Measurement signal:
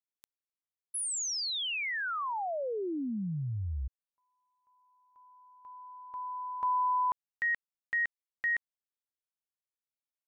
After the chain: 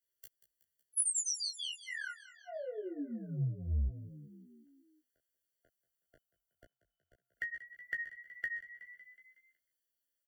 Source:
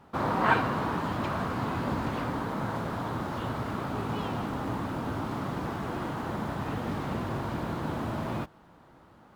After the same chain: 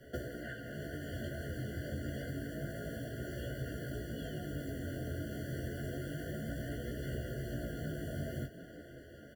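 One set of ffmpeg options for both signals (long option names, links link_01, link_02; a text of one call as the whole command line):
ffmpeg -i in.wav -filter_complex "[0:a]equalizer=frequency=190:width_type=o:width=0.39:gain=-10,flanger=delay=16:depth=7.7:speed=0.28,acompressor=threshold=-41dB:ratio=10:attack=52:release=638:detection=peak,asplit=2[link_01][link_02];[link_02]adelay=14,volume=-2.5dB[link_03];[link_01][link_03]amix=inputs=2:normalize=0,asplit=7[link_04][link_05][link_06][link_07][link_08][link_09][link_10];[link_05]adelay=185,afreqshift=41,volume=-16dB[link_11];[link_06]adelay=370,afreqshift=82,volume=-20.6dB[link_12];[link_07]adelay=555,afreqshift=123,volume=-25.2dB[link_13];[link_08]adelay=740,afreqshift=164,volume=-29.7dB[link_14];[link_09]adelay=925,afreqshift=205,volume=-34.3dB[link_15];[link_10]adelay=1110,afreqshift=246,volume=-38.9dB[link_16];[link_04][link_11][link_12][link_13][link_14][link_15][link_16]amix=inputs=7:normalize=0,acrossover=split=150|5600[link_17][link_18][link_19];[link_18]acompressor=threshold=-48dB:ratio=2.5:attack=35:release=613:knee=2.83:detection=peak[link_20];[link_17][link_20][link_19]amix=inputs=3:normalize=0,highshelf=frequency=9800:gain=10.5,afftfilt=real='re*eq(mod(floor(b*sr/1024/690),2),0)':imag='im*eq(mod(floor(b*sr/1024/690),2),0)':win_size=1024:overlap=0.75,volume=6.5dB" out.wav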